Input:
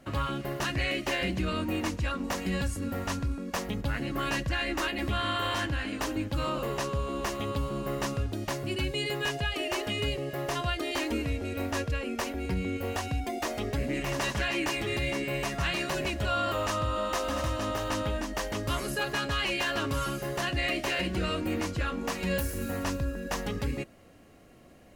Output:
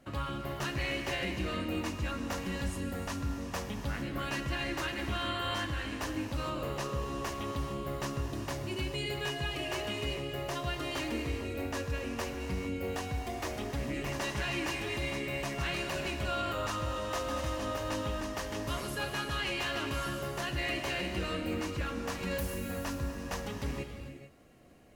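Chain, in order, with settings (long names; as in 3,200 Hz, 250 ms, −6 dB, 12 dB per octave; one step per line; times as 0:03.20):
reverb whose tail is shaped and stops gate 470 ms flat, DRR 4.5 dB
level −5.5 dB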